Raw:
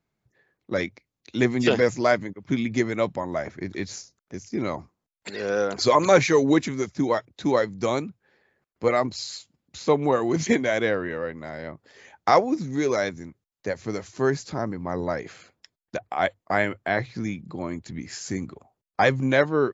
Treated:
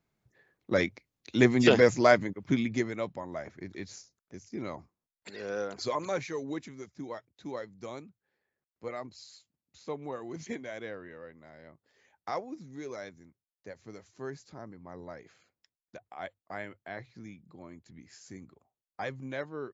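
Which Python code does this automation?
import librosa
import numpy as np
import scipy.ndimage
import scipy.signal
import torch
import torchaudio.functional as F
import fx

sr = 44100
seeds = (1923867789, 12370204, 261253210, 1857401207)

y = fx.gain(x, sr, db=fx.line((2.42, -0.5), (3.02, -10.0), (5.61, -10.0), (6.24, -17.0)))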